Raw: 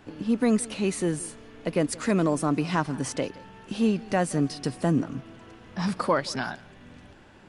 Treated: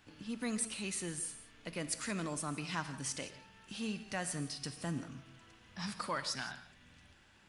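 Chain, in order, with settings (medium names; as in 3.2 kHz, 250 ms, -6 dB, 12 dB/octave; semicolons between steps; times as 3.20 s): amplifier tone stack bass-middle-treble 5-5-5; gated-style reverb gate 200 ms flat, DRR 10.5 dB; trim +2 dB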